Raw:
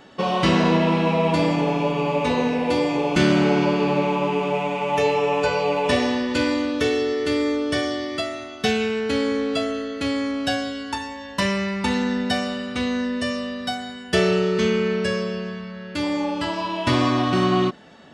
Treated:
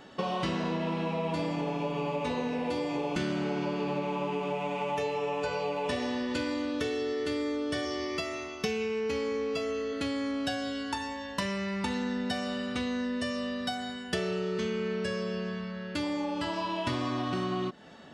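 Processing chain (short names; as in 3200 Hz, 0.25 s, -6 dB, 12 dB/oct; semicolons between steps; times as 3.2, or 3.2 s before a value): 7.85–9.93 ripple EQ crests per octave 0.8, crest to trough 9 dB; compressor 5:1, threshold -26 dBFS, peak gain reduction 11.5 dB; bell 2300 Hz -2 dB 0.26 oct; gain -3 dB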